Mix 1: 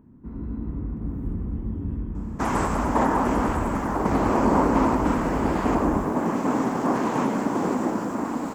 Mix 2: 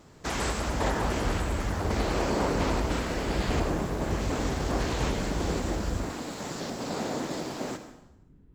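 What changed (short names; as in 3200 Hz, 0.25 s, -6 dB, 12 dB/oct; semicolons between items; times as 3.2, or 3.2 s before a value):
speech: entry -2.15 s; master: add graphic EQ 250/1000/4000 Hz -11/-11/+11 dB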